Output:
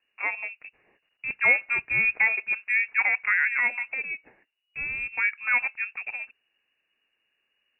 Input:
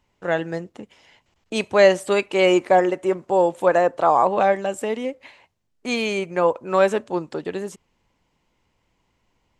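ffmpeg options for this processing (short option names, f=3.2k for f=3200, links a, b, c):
-af "asetrate=54243,aresample=44100,lowpass=f=2.5k:t=q:w=0.5098,lowpass=f=2.5k:t=q:w=0.6013,lowpass=f=2.5k:t=q:w=0.9,lowpass=f=2.5k:t=q:w=2.563,afreqshift=-2900,volume=-6.5dB"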